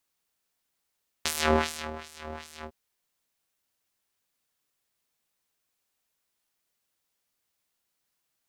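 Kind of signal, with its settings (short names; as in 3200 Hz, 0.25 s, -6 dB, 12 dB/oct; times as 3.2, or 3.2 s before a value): synth patch with filter wobble D#2, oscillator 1 square, filter bandpass, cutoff 1800 Hz, Q 0.95, filter envelope 1 oct, attack 3.7 ms, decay 0.66 s, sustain -20.5 dB, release 0.07 s, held 1.39 s, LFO 2.6 Hz, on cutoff 2 oct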